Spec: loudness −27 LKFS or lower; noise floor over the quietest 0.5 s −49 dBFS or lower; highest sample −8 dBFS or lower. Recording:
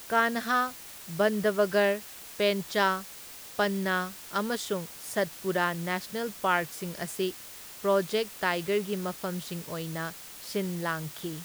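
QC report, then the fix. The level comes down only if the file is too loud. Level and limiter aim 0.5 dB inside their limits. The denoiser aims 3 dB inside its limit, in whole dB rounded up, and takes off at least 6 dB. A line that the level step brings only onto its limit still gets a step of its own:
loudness −29.5 LKFS: in spec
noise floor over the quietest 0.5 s −45 dBFS: out of spec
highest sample −11.0 dBFS: in spec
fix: broadband denoise 7 dB, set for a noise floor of −45 dBFS

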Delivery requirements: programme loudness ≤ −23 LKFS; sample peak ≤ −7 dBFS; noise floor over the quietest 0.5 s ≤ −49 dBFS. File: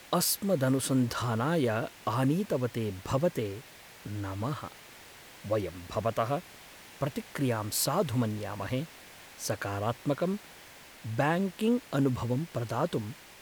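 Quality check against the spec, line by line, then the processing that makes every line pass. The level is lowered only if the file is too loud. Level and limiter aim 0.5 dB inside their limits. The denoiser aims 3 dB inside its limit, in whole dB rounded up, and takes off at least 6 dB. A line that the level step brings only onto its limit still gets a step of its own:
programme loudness −31.0 LKFS: in spec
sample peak −14.5 dBFS: in spec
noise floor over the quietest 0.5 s −51 dBFS: in spec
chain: no processing needed

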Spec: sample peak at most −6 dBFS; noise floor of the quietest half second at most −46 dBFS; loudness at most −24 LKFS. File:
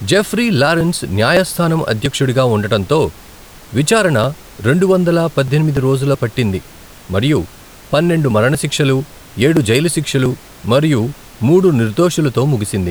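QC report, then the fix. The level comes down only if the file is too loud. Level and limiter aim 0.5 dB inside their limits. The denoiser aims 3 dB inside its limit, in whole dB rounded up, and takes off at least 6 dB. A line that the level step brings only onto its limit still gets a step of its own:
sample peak −1.5 dBFS: out of spec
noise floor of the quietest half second −38 dBFS: out of spec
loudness −14.5 LKFS: out of spec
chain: level −10 dB

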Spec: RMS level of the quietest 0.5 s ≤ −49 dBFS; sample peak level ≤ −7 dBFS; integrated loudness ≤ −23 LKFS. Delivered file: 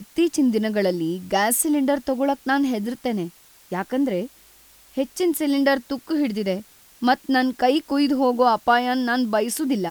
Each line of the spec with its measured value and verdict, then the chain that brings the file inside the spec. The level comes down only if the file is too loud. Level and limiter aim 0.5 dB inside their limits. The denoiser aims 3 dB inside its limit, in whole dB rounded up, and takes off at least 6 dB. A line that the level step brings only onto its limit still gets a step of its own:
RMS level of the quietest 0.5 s −52 dBFS: in spec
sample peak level −6.5 dBFS: out of spec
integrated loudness −22.0 LKFS: out of spec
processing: level −1.5 dB

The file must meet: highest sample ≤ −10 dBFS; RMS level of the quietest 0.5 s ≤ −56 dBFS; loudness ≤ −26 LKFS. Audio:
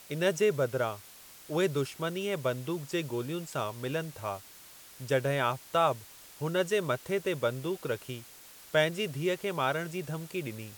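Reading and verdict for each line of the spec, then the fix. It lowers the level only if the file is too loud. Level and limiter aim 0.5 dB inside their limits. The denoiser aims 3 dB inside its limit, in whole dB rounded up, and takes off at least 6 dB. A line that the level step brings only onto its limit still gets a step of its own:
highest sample −12.0 dBFS: in spec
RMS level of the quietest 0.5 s −52 dBFS: out of spec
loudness −31.5 LKFS: in spec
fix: broadband denoise 7 dB, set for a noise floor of −52 dBFS

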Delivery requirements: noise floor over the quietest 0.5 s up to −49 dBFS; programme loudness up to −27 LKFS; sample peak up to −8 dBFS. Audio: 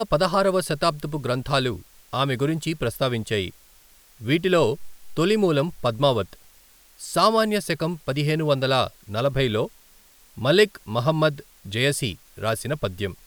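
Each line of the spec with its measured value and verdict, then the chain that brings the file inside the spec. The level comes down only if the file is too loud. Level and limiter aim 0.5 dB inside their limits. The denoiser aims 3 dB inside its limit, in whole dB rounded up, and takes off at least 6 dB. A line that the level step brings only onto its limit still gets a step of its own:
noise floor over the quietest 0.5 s −54 dBFS: in spec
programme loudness −23.5 LKFS: out of spec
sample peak −4.5 dBFS: out of spec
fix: level −4 dB

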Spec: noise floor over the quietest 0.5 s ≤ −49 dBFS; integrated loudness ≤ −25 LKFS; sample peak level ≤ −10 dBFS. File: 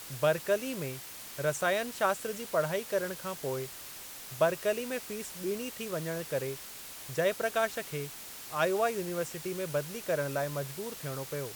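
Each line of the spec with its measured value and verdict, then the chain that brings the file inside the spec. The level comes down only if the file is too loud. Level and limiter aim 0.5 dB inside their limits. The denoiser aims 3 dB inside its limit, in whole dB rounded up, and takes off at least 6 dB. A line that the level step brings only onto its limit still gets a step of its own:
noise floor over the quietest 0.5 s −45 dBFS: out of spec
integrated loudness −33.0 LKFS: in spec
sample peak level −14.0 dBFS: in spec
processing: broadband denoise 7 dB, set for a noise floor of −45 dBFS

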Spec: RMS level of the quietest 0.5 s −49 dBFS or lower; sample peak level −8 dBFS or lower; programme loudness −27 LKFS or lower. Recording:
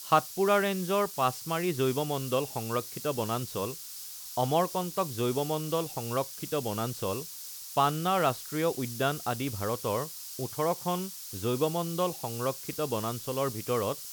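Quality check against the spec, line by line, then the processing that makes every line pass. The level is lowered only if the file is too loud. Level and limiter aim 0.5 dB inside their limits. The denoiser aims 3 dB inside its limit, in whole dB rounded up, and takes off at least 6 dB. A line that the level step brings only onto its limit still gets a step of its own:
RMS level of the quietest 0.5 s −43 dBFS: out of spec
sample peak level −9.0 dBFS: in spec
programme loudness −30.5 LKFS: in spec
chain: broadband denoise 9 dB, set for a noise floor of −43 dBFS

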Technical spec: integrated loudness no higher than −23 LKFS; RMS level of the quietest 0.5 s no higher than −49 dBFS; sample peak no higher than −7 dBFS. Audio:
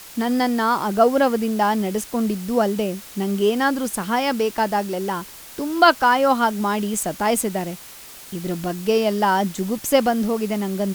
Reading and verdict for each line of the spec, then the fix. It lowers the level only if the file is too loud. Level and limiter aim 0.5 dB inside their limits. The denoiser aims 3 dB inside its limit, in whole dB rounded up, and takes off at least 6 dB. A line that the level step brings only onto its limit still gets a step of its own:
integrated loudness −21.0 LKFS: out of spec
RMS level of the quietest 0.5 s −41 dBFS: out of spec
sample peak −1.5 dBFS: out of spec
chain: broadband denoise 9 dB, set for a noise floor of −41 dBFS
level −2.5 dB
brickwall limiter −7.5 dBFS

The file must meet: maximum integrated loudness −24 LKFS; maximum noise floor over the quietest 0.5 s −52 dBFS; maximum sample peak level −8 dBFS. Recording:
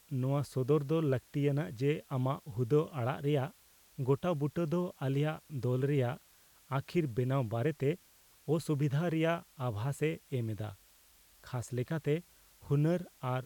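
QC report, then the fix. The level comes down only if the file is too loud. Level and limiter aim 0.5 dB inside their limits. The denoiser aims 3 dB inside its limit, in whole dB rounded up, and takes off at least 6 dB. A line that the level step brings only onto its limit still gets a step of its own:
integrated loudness −34.0 LKFS: in spec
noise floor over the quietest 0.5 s −63 dBFS: in spec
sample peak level −18.5 dBFS: in spec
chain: no processing needed

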